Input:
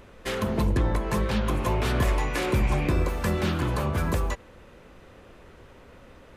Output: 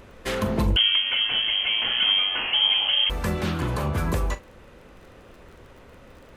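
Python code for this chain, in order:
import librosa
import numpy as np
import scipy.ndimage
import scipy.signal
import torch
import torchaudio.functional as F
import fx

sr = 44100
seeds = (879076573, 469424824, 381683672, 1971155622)

y = fx.rider(x, sr, range_db=4, speed_s=2.0)
y = fx.dmg_crackle(y, sr, seeds[0], per_s=37.0, level_db=-44.0)
y = fx.doubler(y, sr, ms=42.0, db=-13.5)
y = fx.freq_invert(y, sr, carrier_hz=3200, at=(0.76, 3.1))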